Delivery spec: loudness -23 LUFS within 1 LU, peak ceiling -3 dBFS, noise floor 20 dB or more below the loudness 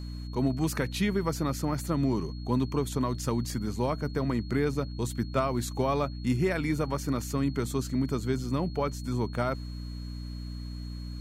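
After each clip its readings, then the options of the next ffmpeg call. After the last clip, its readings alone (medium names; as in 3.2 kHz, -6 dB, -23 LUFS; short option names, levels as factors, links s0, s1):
hum 60 Hz; highest harmonic 300 Hz; hum level -35 dBFS; steady tone 4.3 kHz; tone level -51 dBFS; loudness -30.5 LUFS; peak level -14.5 dBFS; loudness target -23.0 LUFS
-> -af "bandreject=f=60:t=h:w=4,bandreject=f=120:t=h:w=4,bandreject=f=180:t=h:w=4,bandreject=f=240:t=h:w=4,bandreject=f=300:t=h:w=4"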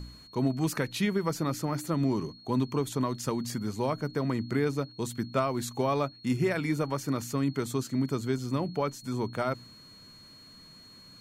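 hum not found; steady tone 4.3 kHz; tone level -51 dBFS
-> -af "bandreject=f=4300:w=30"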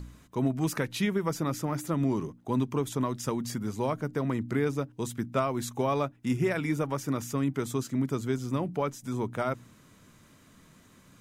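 steady tone not found; loudness -30.5 LUFS; peak level -15.0 dBFS; loudness target -23.0 LUFS
-> -af "volume=2.37"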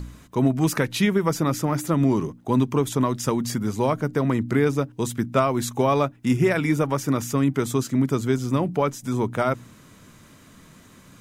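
loudness -23.0 LUFS; peak level -7.5 dBFS; noise floor -51 dBFS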